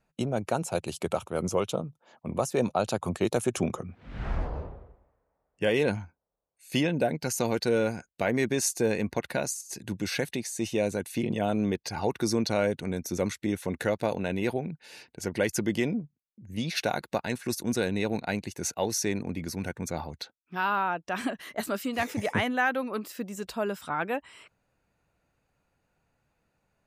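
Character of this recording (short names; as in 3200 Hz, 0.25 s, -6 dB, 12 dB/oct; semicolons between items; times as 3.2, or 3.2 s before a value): noise floor -79 dBFS; spectral tilt -4.5 dB/oct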